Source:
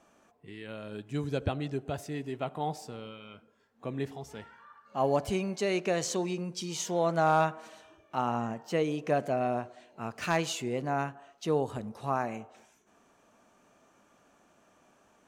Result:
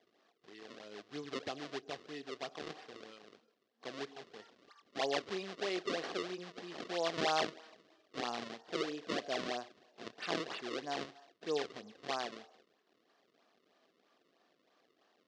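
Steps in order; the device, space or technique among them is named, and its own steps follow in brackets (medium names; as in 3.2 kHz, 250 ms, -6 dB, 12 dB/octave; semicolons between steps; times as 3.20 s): circuit-bent sampling toy (decimation with a swept rate 31×, swing 160% 3.1 Hz; cabinet simulation 450–5300 Hz, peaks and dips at 580 Hz -6 dB, 910 Hz -9 dB, 1.4 kHz -6 dB, 2.3 kHz -5 dB); trim -2 dB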